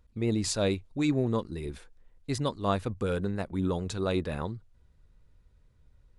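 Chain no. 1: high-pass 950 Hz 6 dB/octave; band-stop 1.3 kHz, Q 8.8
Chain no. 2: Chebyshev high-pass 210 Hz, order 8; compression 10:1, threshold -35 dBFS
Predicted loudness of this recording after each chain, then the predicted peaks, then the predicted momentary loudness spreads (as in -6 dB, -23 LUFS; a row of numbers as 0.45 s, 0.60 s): -37.5 LUFS, -40.5 LUFS; -18.0 dBFS, -24.0 dBFS; 14 LU, 6 LU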